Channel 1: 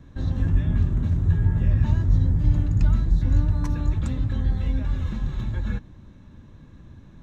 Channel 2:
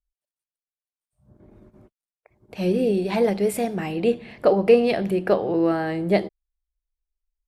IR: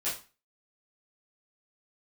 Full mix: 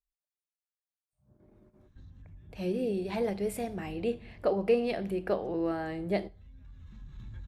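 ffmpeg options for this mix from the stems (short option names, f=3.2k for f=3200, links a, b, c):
-filter_complex "[0:a]acompressor=threshold=-30dB:ratio=6,asoftclip=type=tanh:threshold=-26dB,equalizer=f=530:t=o:w=1.8:g=-9,adelay=1800,volume=-5dB,afade=t=in:st=2.82:d=0.41:silence=0.281838[a];[1:a]volume=-10.5dB,asplit=3[b][c][d];[c]volume=-21.5dB[e];[d]apad=whole_len=398075[f];[a][f]sidechaincompress=threshold=-40dB:ratio=5:attack=6.2:release=1260[g];[2:a]atrim=start_sample=2205[h];[e][h]afir=irnorm=-1:irlink=0[i];[g][b][i]amix=inputs=3:normalize=0"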